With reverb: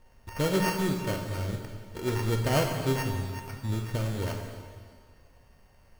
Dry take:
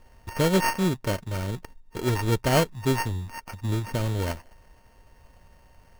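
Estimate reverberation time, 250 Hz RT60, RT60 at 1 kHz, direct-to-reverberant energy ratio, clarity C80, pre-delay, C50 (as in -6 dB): 1.9 s, 1.9 s, 1.9 s, 2.0 dB, 5.0 dB, 5 ms, 4.0 dB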